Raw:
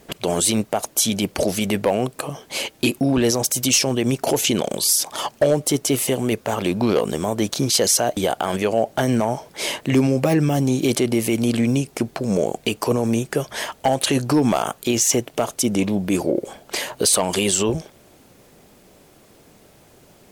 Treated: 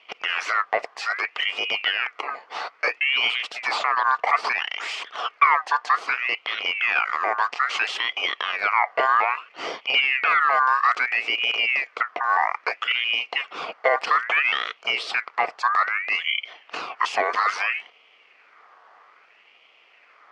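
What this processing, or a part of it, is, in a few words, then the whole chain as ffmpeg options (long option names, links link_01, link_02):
voice changer toy: -af "aeval=exprs='val(0)*sin(2*PI*2000*n/s+2000*0.35/0.61*sin(2*PI*0.61*n/s))':channel_layout=same,highpass=410,equalizer=frequency=450:width_type=q:width=4:gain=7,equalizer=frequency=710:width_type=q:width=4:gain=6,equalizer=frequency=1200:width_type=q:width=4:gain=7,equalizer=frequency=1700:width_type=q:width=4:gain=-5,equalizer=frequency=3800:width_type=q:width=4:gain=-8,lowpass=frequency=4000:width=0.5412,lowpass=frequency=4000:width=1.3066"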